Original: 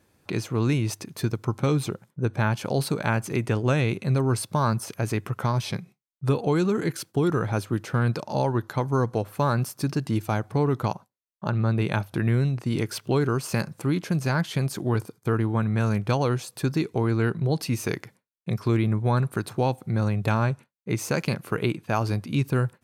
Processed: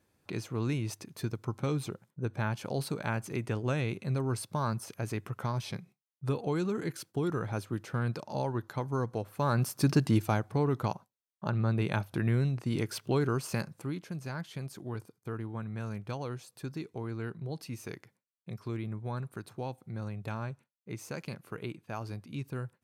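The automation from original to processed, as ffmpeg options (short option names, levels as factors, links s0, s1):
-af "volume=1.19,afade=t=in:st=9.36:d=0.6:silence=0.316228,afade=t=out:st=9.96:d=0.51:silence=0.446684,afade=t=out:st=13.39:d=0.64:silence=0.375837"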